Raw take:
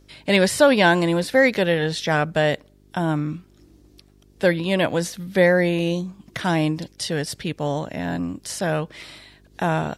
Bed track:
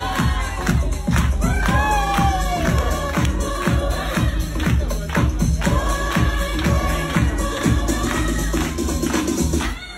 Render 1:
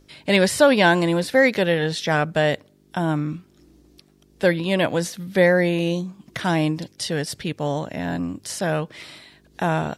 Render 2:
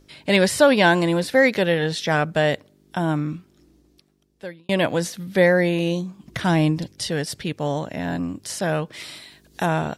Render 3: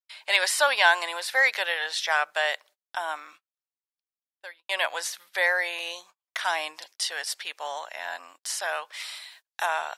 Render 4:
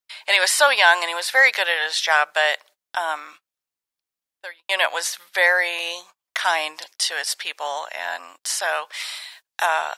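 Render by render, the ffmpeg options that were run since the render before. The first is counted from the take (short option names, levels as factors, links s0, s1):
-af "bandreject=f=50:t=h:w=4,bandreject=f=100:t=h:w=4"
-filter_complex "[0:a]asettb=1/sr,asplit=3[s0][s1][s2];[s0]atrim=end=6.234[s3];[s1]atrim=start=6.23:end=7.1,asetpts=PTS-STARTPTS,afade=t=in:d=0.004:c=qsin,afade=t=out:st=0.866:d=0.004:c=qsin,lowshelf=f=120:g=11[s4];[s2]atrim=start=7.096[s5];[s3][s4]acrossfade=d=0.004:c1=hsin:c2=qsin[s6];[s6][s5]acrossfade=d=0.004:c1=qsin:c2=hsin,asettb=1/sr,asplit=3[s7][s8][s9];[s7]atrim=end=8.934[s10];[s8]atrim=start=8.93:end=9.66,asetpts=PTS-STARTPTS,afade=t=in:d=0.004:c=qsin,afade=t=out:st=0.726:d=0.004:c=qsin,highshelf=f=4200:g=9.5[s11];[s9]atrim=start=9.656[s12];[s10][s11]acrossfade=d=0.004:c1=hsin:c2=qsin[s13];[s13][s12]acrossfade=d=0.004:c1=qsin:c2=hsin,asplit=2[s14][s15];[s14]atrim=end=4.69,asetpts=PTS-STARTPTS,afade=t=out:st=3.26:d=1.43[s16];[s15]atrim=start=4.69,asetpts=PTS-STARTPTS,afade=t=in:d=0.004:c=hsin[s17];[s16][s17]concat=n=2:v=0:a=1"
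-af "highpass=f=800:w=0.5412,highpass=f=800:w=1.3066,agate=range=0.0141:threshold=0.00282:ratio=16:detection=peak"
-af "volume=2.11,alimiter=limit=0.708:level=0:latency=1"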